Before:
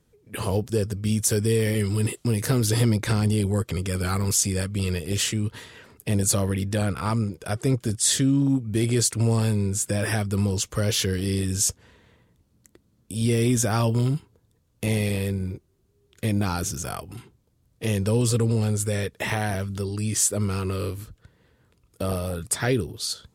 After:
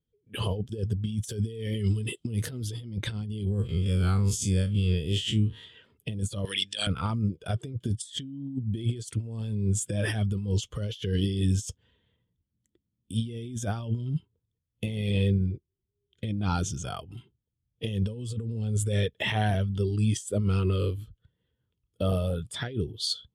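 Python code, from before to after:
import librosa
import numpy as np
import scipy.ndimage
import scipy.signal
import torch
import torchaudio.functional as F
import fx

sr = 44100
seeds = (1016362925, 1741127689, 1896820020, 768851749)

y = fx.spec_blur(x, sr, span_ms=88.0, at=(3.46, 5.62), fade=0.02)
y = fx.weighting(y, sr, curve='ITU-R 468', at=(6.45, 6.87))
y = fx.lowpass(y, sr, hz=9600.0, slope=12, at=(15.09, 16.96))
y = fx.peak_eq(y, sr, hz=3200.0, db=11.5, octaves=0.46)
y = fx.over_compress(y, sr, threshold_db=-25.0, ratio=-0.5)
y = fx.spectral_expand(y, sr, expansion=1.5)
y = y * 10.0 ** (-7.5 / 20.0)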